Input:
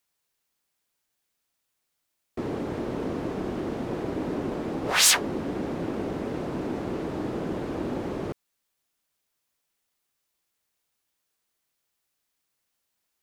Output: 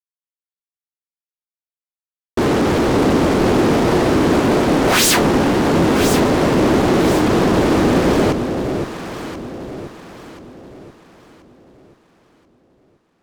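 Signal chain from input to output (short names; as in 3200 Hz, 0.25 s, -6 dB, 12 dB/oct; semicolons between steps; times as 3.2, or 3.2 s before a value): fuzz box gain 37 dB, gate -45 dBFS; echo with dull and thin repeats by turns 0.516 s, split 810 Hz, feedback 60%, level -5 dB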